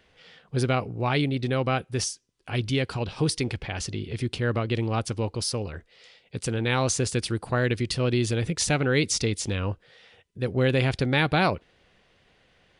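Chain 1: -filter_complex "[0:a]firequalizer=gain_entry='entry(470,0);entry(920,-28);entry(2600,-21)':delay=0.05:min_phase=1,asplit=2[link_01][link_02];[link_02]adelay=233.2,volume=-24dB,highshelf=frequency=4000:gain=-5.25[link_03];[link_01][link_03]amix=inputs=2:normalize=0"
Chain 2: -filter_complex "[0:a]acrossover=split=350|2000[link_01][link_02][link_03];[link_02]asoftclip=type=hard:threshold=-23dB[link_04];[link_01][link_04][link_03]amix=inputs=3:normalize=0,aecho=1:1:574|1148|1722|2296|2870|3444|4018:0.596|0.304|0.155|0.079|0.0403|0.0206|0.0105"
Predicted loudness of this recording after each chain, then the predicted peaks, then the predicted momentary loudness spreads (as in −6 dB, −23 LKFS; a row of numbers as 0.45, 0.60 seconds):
−28.5, −26.0 LKFS; −14.5, −7.5 dBFS; 9, 7 LU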